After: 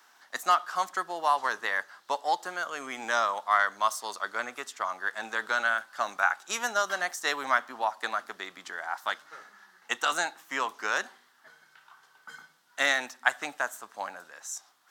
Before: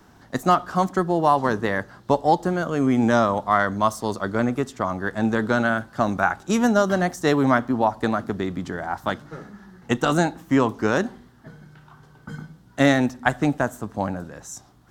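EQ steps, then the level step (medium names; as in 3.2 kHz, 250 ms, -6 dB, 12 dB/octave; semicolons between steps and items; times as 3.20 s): high-pass 1.2 kHz 12 dB/octave; 0.0 dB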